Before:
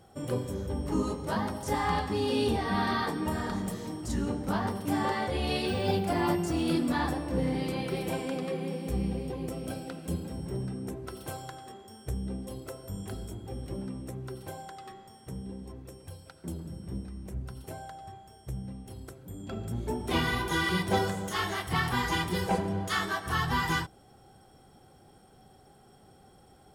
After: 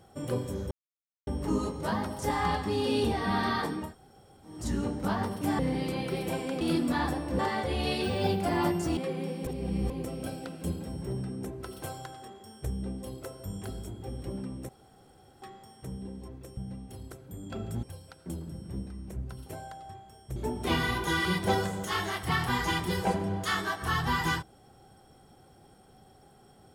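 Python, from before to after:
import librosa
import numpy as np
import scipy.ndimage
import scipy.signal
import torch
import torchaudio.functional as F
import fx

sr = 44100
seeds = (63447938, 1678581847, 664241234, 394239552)

y = fx.edit(x, sr, fx.insert_silence(at_s=0.71, length_s=0.56),
    fx.room_tone_fill(start_s=3.27, length_s=0.71, crossfade_s=0.24),
    fx.swap(start_s=5.03, length_s=1.58, other_s=7.39, other_length_s=1.02),
    fx.reverse_span(start_s=8.91, length_s=0.43),
    fx.room_tone_fill(start_s=14.13, length_s=0.73),
    fx.move(start_s=18.54, length_s=1.26, to_s=16.01), tone=tone)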